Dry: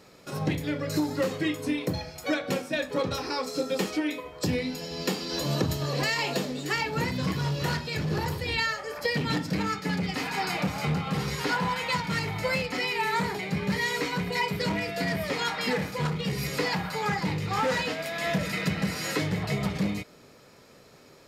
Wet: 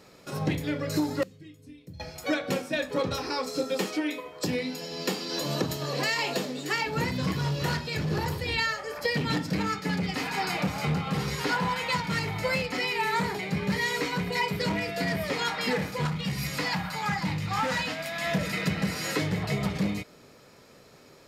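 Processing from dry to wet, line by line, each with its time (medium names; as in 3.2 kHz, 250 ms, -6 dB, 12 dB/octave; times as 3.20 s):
1.23–2.00 s: amplifier tone stack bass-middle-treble 10-0-1
3.64–6.87 s: Bessel high-pass 180 Hz
16.05–18.32 s: peaking EQ 420 Hz -13 dB 0.49 oct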